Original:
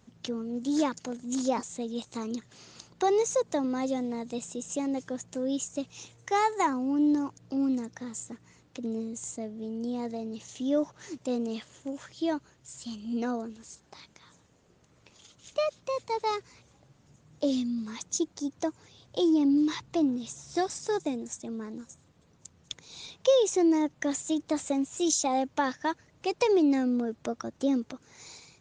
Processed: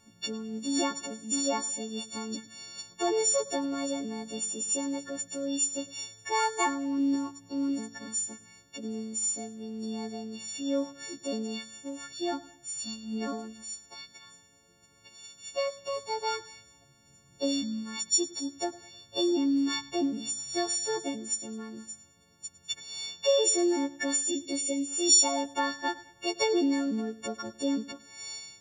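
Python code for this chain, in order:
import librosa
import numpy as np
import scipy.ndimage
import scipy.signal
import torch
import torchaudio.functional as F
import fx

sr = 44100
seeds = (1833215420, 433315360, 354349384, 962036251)

y = fx.freq_snap(x, sr, grid_st=4)
y = fx.spec_box(y, sr, start_s=24.28, length_s=0.6, low_hz=650.0, high_hz=1800.0, gain_db=-17)
y = fx.echo_feedback(y, sr, ms=104, feedback_pct=39, wet_db=-19)
y = y * 10.0 ** (-3.0 / 20.0)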